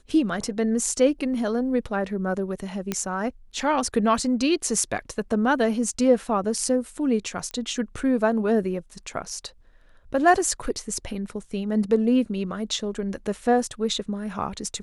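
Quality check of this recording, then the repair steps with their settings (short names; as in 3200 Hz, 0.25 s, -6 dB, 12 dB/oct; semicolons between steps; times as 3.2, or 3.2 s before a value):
2.92 pop -11 dBFS
7.51 pop -19 dBFS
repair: de-click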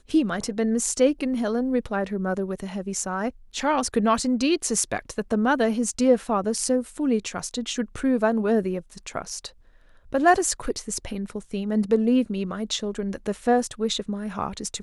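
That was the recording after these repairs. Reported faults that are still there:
2.92 pop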